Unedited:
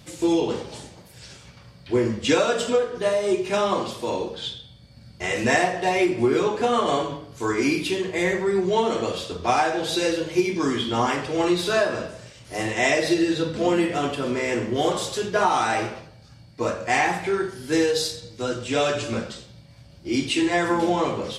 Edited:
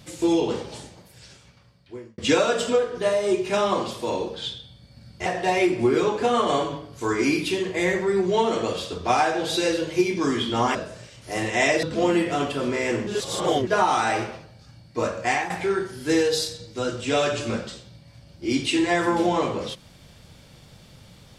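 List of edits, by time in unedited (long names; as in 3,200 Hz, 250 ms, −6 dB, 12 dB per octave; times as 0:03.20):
0:00.71–0:02.18: fade out
0:05.26–0:05.65: remove
0:11.14–0:11.98: remove
0:13.06–0:13.46: remove
0:14.70–0:15.30: reverse
0:16.88–0:17.13: fade out, to −11 dB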